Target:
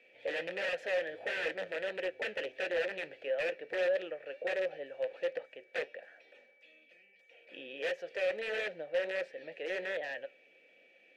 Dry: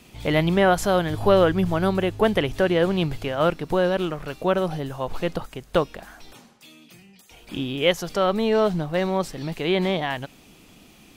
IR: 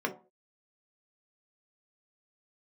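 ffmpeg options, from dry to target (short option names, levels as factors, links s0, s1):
-filter_complex "[0:a]lowshelf=f=160:g=-6,aeval=exprs='(mod(6.31*val(0)+1,2)-1)/6.31':c=same,flanger=delay=3.8:depth=6.5:regen=-74:speed=1.5:shape=triangular,aeval=exprs='val(0)+0.00158*sin(2*PI*2300*n/s)':c=same,asplit=3[s0][s1][s2];[s0]bandpass=f=530:t=q:w=8,volume=1[s3];[s1]bandpass=f=1840:t=q:w=8,volume=0.501[s4];[s2]bandpass=f=2480:t=q:w=8,volume=0.355[s5];[s3][s4][s5]amix=inputs=3:normalize=0,asplit=2[s6][s7];[s7]highpass=f=720:p=1,volume=7.94,asoftclip=type=tanh:threshold=0.158[s8];[s6][s8]amix=inputs=2:normalize=0,lowpass=f=2400:p=1,volume=0.501,asplit=2[s9][s10];[1:a]atrim=start_sample=2205[s11];[s10][s11]afir=irnorm=-1:irlink=0,volume=0.0562[s12];[s9][s12]amix=inputs=2:normalize=0,volume=0.596"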